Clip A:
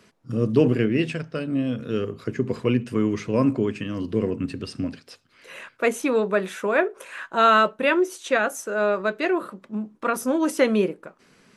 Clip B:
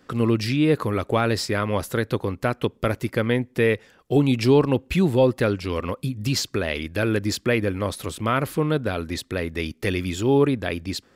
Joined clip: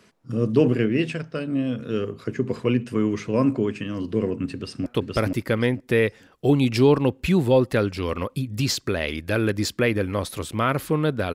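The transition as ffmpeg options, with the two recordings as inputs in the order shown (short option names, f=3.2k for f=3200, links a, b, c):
-filter_complex "[0:a]apad=whole_dur=11.34,atrim=end=11.34,atrim=end=4.862[a];[1:a]atrim=start=2.528:end=9.01[b];[a][b]acrossfade=d=0.004:c1=hsin:c2=hsin,asplit=2[c][d];[d]afade=t=in:st=4.54:d=0.01,afade=t=out:st=4.86:d=0.01,aecho=0:1:470|940|1410:0.944061|0.188812|0.0377624[e];[c][e]amix=inputs=2:normalize=0"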